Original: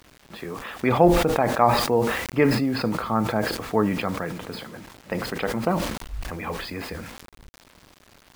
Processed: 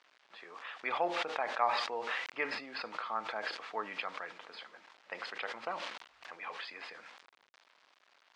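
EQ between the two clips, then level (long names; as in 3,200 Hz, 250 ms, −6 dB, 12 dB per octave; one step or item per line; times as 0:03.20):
dynamic equaliser 3,000 Hz, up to +4 dB, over −40 dBFS, Q 0.88
band-pass filter 800–5,200 Hz
high-frequency loss of the air 58 metres
−9.0 dB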